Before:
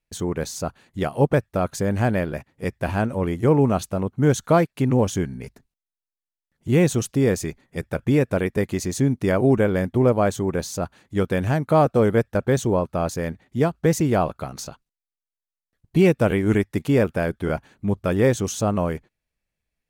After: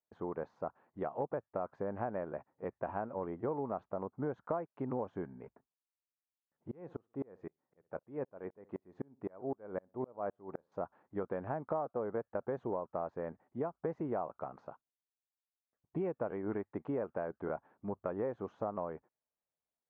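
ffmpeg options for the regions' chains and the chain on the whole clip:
-filter_complex "[0:a]asettb=1/sr,asplit=3[a][b][c];[a]atrim=end=6.714[d];[b]atrim=start=6.71:end=10.72,asetpts=PTS-STARTPTS,afade=t=in:d=0.004:c=qsin,afade=t=out:st=4.006:d=0.004:c=qsin,asplit=2[e][f];[f]adelay=63,lowpass=f=2k:p=1,volume=-23dB,asplit=2[g][h];[h]adelay=63,lowpass=f=2k:p=1,volume=0.25[i];[e][g][i]amix=inputs=3:normalize=0,atrim=end_sample=176841,aeval=exprs='val(0)*pow(10,-35*if(lt(mod(-3.9*n/s,1),2*abs(-3.9)/1000),1-mod(-3.9*n/s,1)/(2*abs(-3.9)/1000),(mod(-3.9*n/s,1)-2*abs(-3.9)/1000)/(1-2*abs(-3.9)/1000))/20)':c=same[j];[c]atrim=start=10.716[k];[d][j]acrossfade=d=0.004:c1=hsin:c2=qsin[l];[l][k]acrossfade=d=0.004:c1=qsin:c2=hsin,lowpass=f=1k:w=0.5412,lowpass=f=1k:w=1.3066,aderivative,acompressor=threshold=-47dB:ratio=6,volume=14dB"

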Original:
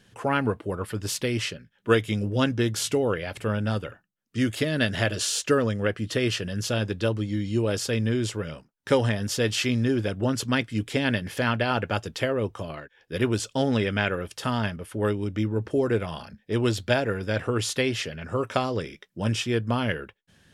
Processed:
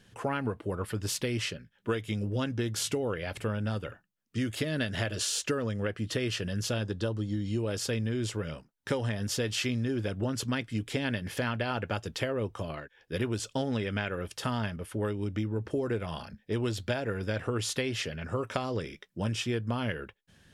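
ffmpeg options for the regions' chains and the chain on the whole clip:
-filter_complex "[0:a]asettb=1/sr,asplit=3[a][b][c];[a]atrim=end=6.834[d];[b]atrim=start=6.83:end=7.46,asetpts=PTS-STARTPTS,afade=t=in:d=0.004:c=qsin,afade=t=out:st=0.626:d=0.004:c=qsin,lowpass=11k,equalizer=f=2.3k:t=o:w=0.4:g=-11.5[e];[c]atrim=start=7.456[f];[d][e]acrossfade=d=0.004:c1=hsin:c2=qsin[g];[g][f]acrossfade=d=0.004:c1=qsin:c2=hsin,lowshelf=f=69:g=5,acompressor=threshold=-25dB:ratio=6,volume=-2dB"

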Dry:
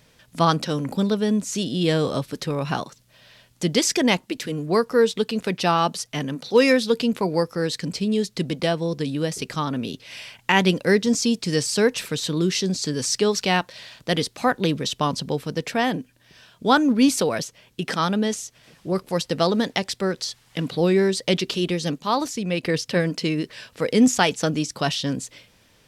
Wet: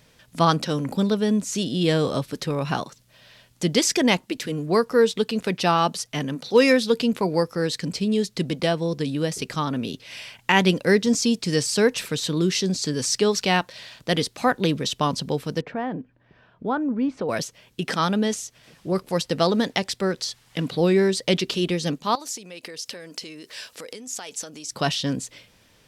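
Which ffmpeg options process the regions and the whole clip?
-filter_complex "[0:a]asettb=1/sr,asplit=3[a][b][c];[a]atrim=end=15.614[d];[b]atrim=start=15.61:end=17.29,asetpts=PTS-STARTPTS,afade=t=in:d=0.004:c=qsin,afade=t=out:st=1.676:d=0.004:c=qsin,lowpass=1.4k,acompressor=threshold=-32dB:ratio=1.5:attack=3.2:release=140:knee=1:detection=peak[e];[c]atrim=start=17.286[f];[d][e]acrossfade=d=0.004:c1=hsin:c2=qsin[g];[g][f]acrossfade=d=0.004:c1=qsin:c2=hsin,asettb=1/sr,asplit=3[h][i][j];[h]atrim=end=22.154[k];[i]atrim=start=22.15:end=24.72,asetpts=PTS-STARTPTS,afade=t=in:d=0.004:c=qsin,afade=t=out:st=2.566:d=0.004:c=qsin,acompressor=threshold=-32dB:ratio=16:attack=3.2:release=140:knee=1:detection=peak,bass=f=250:g=-13,treble=f=4k:g=8[l];[j]atrim=start=24.716[m];[k][l]acrossfade=d=0.004:c1=hsin:c2=qsin[n];[n][m]acrossfade=d=0.004:c1=qsin:c2=hsin"

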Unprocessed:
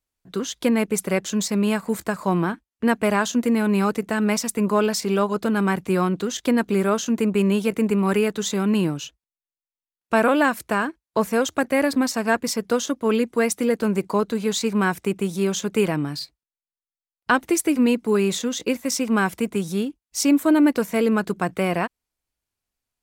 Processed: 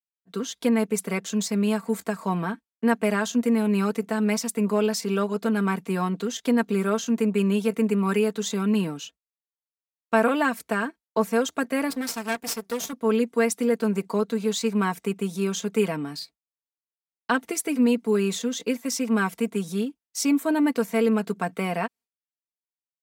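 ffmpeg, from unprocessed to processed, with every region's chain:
-filter_complex "[0:a]asettb=1/sr,asplit=3[a][b][c];[a]atrim=end=11.904[d];[b]atrim=start=11.9:end=12.93,asetpts=PTS-STARTPTS,afade=t=in:d=0.004:c=qsin,afade=t=out:st=1.026:d=0.004:c=qsin,bass=f=250:g=-3,treble=f=4k:g=7,aeval=exprs='max(val(0),0)':c=same[e];[c]atrim=start=12.926[f];[d][e]acrossfade=d=0.004:c1=hsin:c2=qsin[g];[g][f]acrossfade=d=0.004:c1=qsin:c2=hsin,agate=range=-33dB:threshold=-43dB:ratio=3:detection=peak,highpass=140,aecho=1:1:4.4:0.6,volume=-5dB"

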